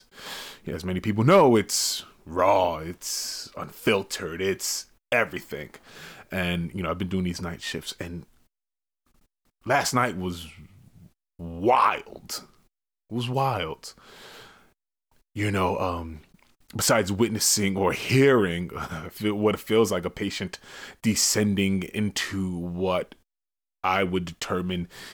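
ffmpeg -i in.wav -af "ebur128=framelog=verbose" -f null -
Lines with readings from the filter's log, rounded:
Integrated loudness:
  I:         -25.1 LUFS
  Threshold: -36.2 LUFS
Loudness range:
  LRA:         8.4 LU
  Threshold: -46.6 LUFS
  LRA low:   -31.6 LUFS
  LRA high:  -23.2 LUFS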